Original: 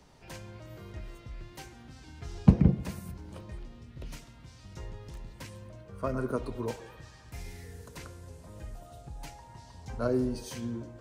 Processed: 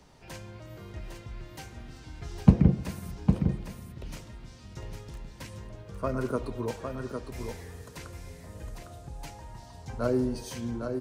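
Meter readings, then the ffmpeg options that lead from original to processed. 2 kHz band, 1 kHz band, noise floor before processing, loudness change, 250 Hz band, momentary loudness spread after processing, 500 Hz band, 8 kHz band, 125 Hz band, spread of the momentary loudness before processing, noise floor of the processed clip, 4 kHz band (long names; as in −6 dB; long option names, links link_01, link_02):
+2.5 dB, +2.5 dB, −53 dBFS, +2.0 dB, +2.5 dB, 20 LU, +2.5 dB, +2.0 dB, +2.5 dB, 21 LU, −49 dBFS, +2.0 dB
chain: -af "aecho=1:1:806:0.501,volume=1.5dB"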